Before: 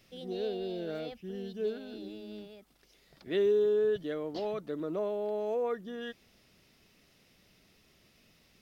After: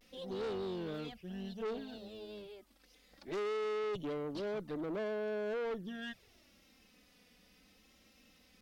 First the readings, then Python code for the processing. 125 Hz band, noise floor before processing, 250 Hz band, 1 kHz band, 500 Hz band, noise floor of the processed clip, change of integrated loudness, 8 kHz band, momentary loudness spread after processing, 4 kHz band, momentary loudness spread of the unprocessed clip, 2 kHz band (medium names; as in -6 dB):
-1.0 dB, -66 dBFS, -3.5 dB, -2.0 dB, -7.0 dB, -67 dBFS, -6.0 dB, no reading, 12 LU, -2.5 dB, 17 LU, +0.5 dB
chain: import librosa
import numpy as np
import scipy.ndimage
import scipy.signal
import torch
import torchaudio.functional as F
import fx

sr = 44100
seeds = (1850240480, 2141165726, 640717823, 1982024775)

y = fx.env_flanger(x, sr, rest_ms=4.2, full_db=-30.0)
y = fx.tube_stage(y, sr, drive_db=39.0, bias=0.45)
y = fx.vibrato(y, sr, rate_hz=0.65, depth_cents=57.0)
y = y * librosa.db_to_amplitude(4.0)